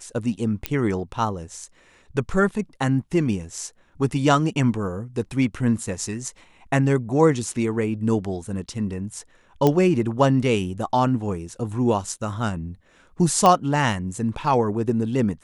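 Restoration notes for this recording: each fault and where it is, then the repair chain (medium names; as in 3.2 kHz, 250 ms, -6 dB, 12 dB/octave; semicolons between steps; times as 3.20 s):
0.66 s: pop -7 dBFS
9.67 s: pop -7 dBFS
13.46 s: pop -5 dBFS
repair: de-click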